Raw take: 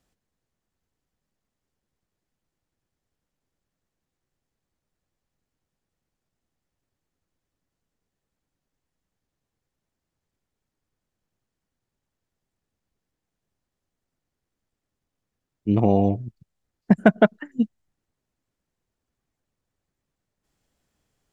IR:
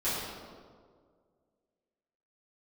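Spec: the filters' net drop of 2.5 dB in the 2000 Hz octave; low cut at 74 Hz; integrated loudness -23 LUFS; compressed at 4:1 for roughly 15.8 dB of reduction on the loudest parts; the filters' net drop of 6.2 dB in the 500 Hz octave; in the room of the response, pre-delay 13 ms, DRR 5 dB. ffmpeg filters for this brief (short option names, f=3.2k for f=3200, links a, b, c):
-filter_complex "[0:a]highpass=74,equalizer=f=500:t=o:g=-8.5,equalizer=f=2k:t=o:g=-3,acompressor=threshold=-32dB:ratio=4,asplit=2[a][b];[1:a]atrim=start_sample=2205,adelay=13[c];[b][c]afir=irnorm=-1:irlink=0,volume=-14dB[d];[a][d]amix=inputs=2:normalize=0,volume=13.5dB"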